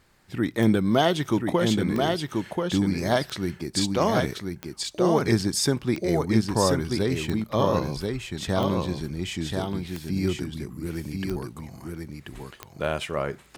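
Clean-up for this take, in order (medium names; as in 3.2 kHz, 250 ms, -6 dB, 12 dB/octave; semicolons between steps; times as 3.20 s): de-click; inverse comb 1034 ms -4 dB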